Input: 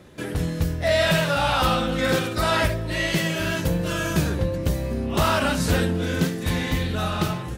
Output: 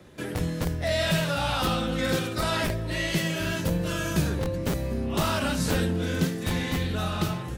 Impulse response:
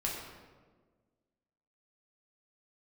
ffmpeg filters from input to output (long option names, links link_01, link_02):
-filter_complex "[0:a]acrossover=split=370|3000[link_01][link_02][link_03];[link_02]acompressor=threshold=-32dB:ratio=1.5[link_04];[link_01][link_04][link_03]amix=inputs=3:normalize=0,acrossover=split=100|5300[link_05][link_06][link_07];[link_05]aeval=exprs='(mod(13.3*val(0)+1,2)-1)/13.3':channel_layout=same[link_08];[link_08][link_06][link_07]amix=inputs=3:normalize=0,volume=-2.5dB"